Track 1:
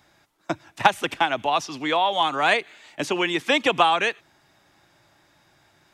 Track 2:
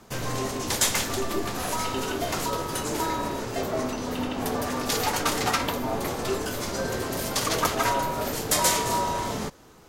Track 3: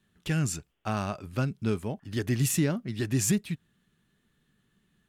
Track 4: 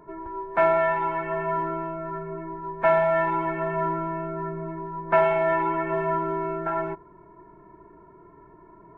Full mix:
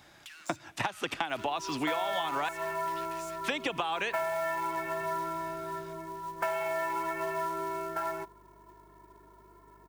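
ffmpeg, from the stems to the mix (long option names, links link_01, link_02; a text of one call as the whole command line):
ffmpeg -i stem1.wav -i stem2.wav -i stem3.wav -i stem4.wav -filter_complex "[0:a]acompressor=threshold=-26dB:ratio=6,volume=2.5dB,asplit=3[link_01][link_02][link_03];[link_01]atrim=end=2.49,asetpts=PTS-STARTPTS,afade=type=out:start_time=2.486:duration=0.004:curve=hsin[link_04];[link_02]atrim=start=2.49:end=3.44,asetpts=PTS-STARTPTS,volume=0[link_05];[link_03]atrim=start=3.44,asetpts=PTS-STARTPTS,afade=type=in:duration=0.004:curve=hsin[link_06];[link_04][link_05][link_06]concat=n=3:v=0:a=1[link_07];[2:a]asplit=2[link_08][link_09];[link_09]highpass=frequency=720:poles=1,volume=28dB,asoftclip=type=tanh:threshold=-15dB[link_10];[link_08][link_10]amix=inputs=2:normalize=0,lowpass=frequency=7900:poles=1,volume=-6dB,highpass=frequency=1300:width=0.5412,highpass=frequency=1300:width=1.3066,acompressor=threshold=-34dB:ratio=6,volume=-13.5dB[link_11];[3:a]aemphasis=mode=production:type=riaa,aeval=exprs='val(0)+0.00141*(sin(2*PI*50*n/s)+sin(2*PI*2*50*n/s)/2+sin(2*PI*3*50*n/s)/3+sin(2*PI*4*50*n/s)/4+sin(2*PI*5*50*n/s)/5)':channel_layout=same,acrusher=bits=4:mode=log:mix=0:aa=0.000001,adelay=1300,volume=-4.5dB[link_12];[link_07][link_11][link_12]amix=inputs=3:normalize=0,acompressor=threshold=-29dB:ratio=4" out.wav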